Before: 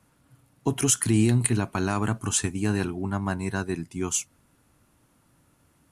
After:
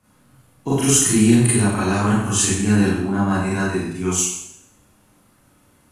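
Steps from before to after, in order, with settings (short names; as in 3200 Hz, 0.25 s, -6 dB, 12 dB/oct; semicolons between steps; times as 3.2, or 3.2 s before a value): Schroeder reverb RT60 0.74 s, combs from 30 ms, DRR -9.5 dB; gain -2 dB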